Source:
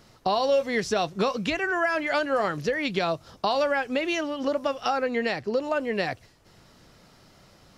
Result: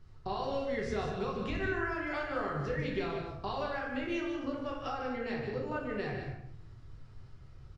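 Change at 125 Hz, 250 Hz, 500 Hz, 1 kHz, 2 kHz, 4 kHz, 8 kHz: 0.0 dB, -6.5 dB, -10.5 dB, -10.5 dB, -9.5 dB, -13.5 dB, under -15 dB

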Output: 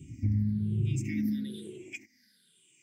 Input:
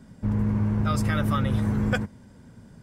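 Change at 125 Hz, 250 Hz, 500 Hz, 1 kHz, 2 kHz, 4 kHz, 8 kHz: -6.0 dB, -6.5 dB, -14.0 dB, under -40 dB, -13.5 dB, -11.5 dB, -5.5 dB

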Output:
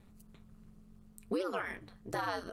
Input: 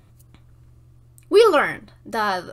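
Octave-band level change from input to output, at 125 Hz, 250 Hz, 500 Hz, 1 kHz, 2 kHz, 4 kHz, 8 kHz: -9.0 dB, -12.5 dB, -21.5 dB, -16.5 dB, -16.0 dB, -18.5 dB, -14.5 dB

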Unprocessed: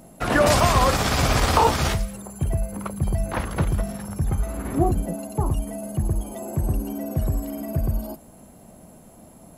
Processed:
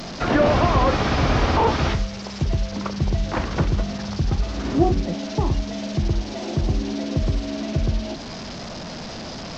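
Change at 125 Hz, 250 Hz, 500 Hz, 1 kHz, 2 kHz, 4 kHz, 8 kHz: +1.5 dB, +3.5 dB, +1.5 dB, -0.5 dB, -0.5 dB, 0.0 dB, -7.5 dB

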